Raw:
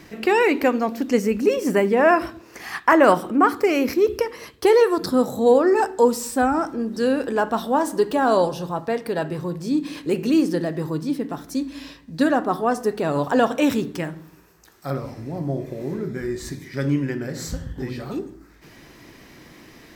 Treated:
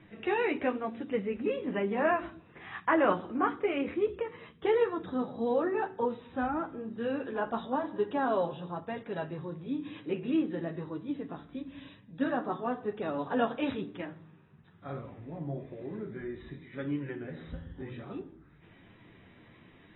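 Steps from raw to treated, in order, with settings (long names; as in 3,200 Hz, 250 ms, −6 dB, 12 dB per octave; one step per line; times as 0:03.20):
noise in a band 94–210 Hz −49 dBFS
flanger 1 Hz, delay 9.1 ms, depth 4.4 ms, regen −21%
level −8.5 dB
AAC 16 kbit/s 22,050 Hz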